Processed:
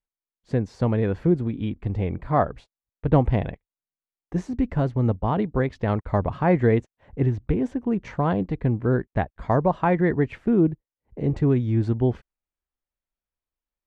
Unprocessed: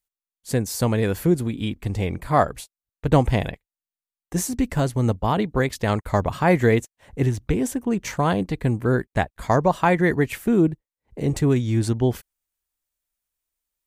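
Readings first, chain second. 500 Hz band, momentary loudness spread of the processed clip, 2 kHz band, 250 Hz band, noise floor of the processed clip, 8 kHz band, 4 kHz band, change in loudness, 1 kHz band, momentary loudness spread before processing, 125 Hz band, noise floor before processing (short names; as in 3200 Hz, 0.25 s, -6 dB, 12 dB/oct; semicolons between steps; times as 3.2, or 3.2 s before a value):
-1.5 dB, 8 LU, -6.5 dB, -1.0 dB, under -85 dBFS, under -25 dB, under -10 dB, -1.5 dB, -3.0 dB, 8 LU, -0.5 dB, under -85 dBFS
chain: tape spacing loss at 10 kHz 36 dB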